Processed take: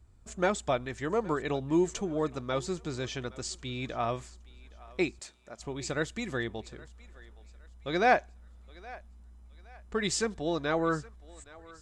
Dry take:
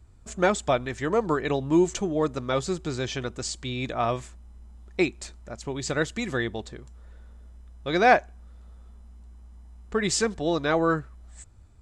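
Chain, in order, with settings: 5.19–5.6 HPF 370 Hz 6 dB/oct; 8.17–10.09 dynamic EQ 4400 Hz, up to +6 dB, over -50 dBFS, Q 0.92; thinning echo 0.818 s, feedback 37%, high-pass 490 Hz, level -20 dB; gain -5.5 dB

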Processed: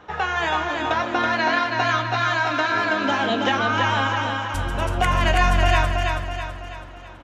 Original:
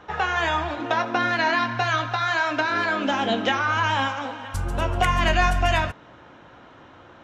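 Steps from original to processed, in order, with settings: feedback echo 0.327 s, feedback 48%, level -4 dB

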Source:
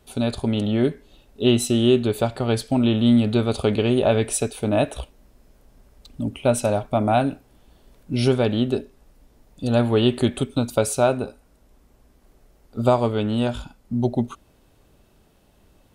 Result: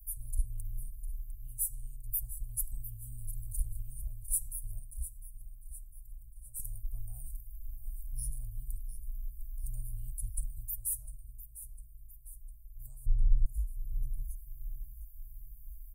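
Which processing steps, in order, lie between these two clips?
inverse Chebyshev band-stop 180–3900 Hz, stop band 70 dB; 13.06–13.46 tilt -4.5 dB/oct; vocal rider within 4 dB 0.5 s; 4.79–6.6 resonator 280 Hz, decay 0.82 s, mix 70%; feedback echo 0.703 s, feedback 52%, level -13.5 dB; gain +12 dB

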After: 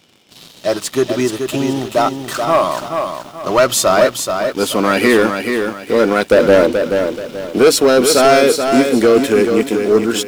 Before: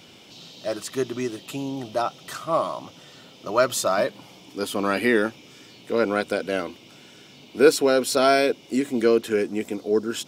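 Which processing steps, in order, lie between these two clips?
6.31–7.59 resonant low shelf 740 Hz +7 dB, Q 3; sample leveller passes 3; lo-fi delay 0.43 s, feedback 35%, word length 7-bit, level -6 dB

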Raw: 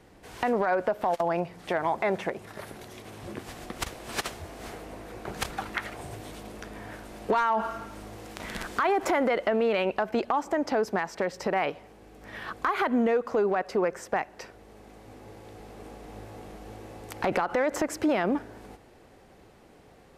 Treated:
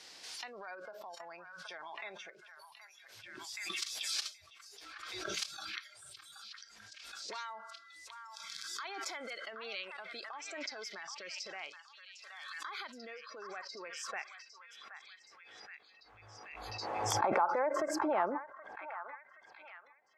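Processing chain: spectral noise reduction 22 dB; 7.38–8.04 whine 2000 Hz -50 dBFS; band-pass sweep 4900 Hz -> 900 Hz, 13.21–17.01; on a send: delay with a stepping band-pass 0.774 s, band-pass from 1300 Hz, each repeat 0.7 oct, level -6 dB; on the sum: backwards sustainer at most 28 dB/s; gain +1.5 dB

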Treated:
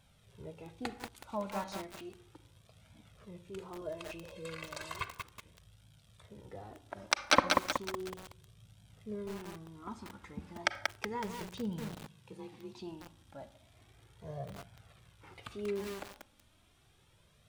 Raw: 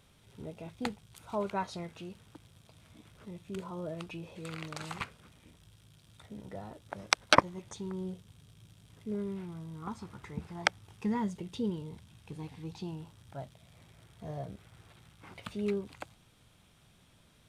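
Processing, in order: 3.81–5.06 comb 1.9 ms, depth 85%; 11.95–12.79 frequency shift +36 Hz; flange 0.34 Hz, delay 1.2 ms, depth 2.6 ms, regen -17%; reverb RT60 0.65 s, pre-delay 33 ms, DRR 12.5 dB; lo-fi delay 0.186 s, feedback 55%, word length 7-bit, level -3 dB

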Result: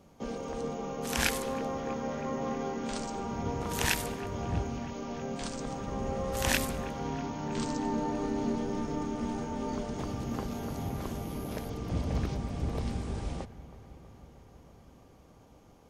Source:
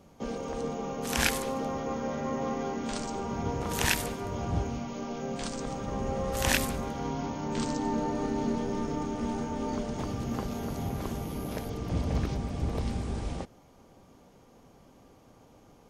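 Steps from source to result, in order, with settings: dark delay 0.321 s, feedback 74%, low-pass 2800 Hz, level -17.5 dB; gain -2 dB

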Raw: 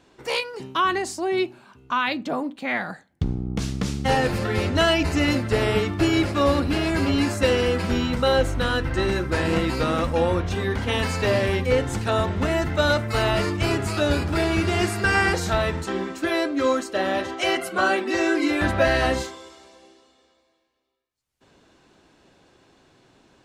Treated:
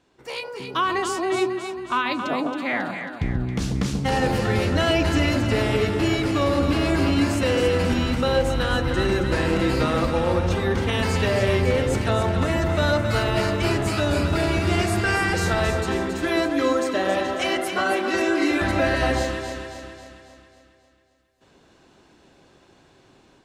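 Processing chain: limiter -14 dBFS, peak gain reduction 6.5 dB; AGC gain up to 8 dB; echo with dull and thin repeats by turns 0.136 s, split 1000 Hz, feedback 72%, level -4 dB; gain -7.5 dB

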